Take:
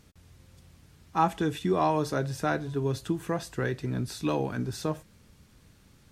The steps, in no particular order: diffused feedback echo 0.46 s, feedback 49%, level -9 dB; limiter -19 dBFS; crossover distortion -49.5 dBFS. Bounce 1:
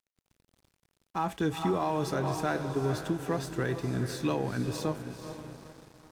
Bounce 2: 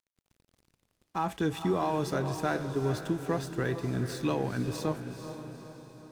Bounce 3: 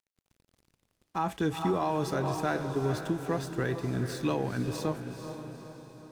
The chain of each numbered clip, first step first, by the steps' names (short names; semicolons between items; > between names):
diffused feedback echo > limiter > crossover distortion; limiter > crossover distortion > diffused feedback echo; crossover distortion > diffused feedback echo > limiter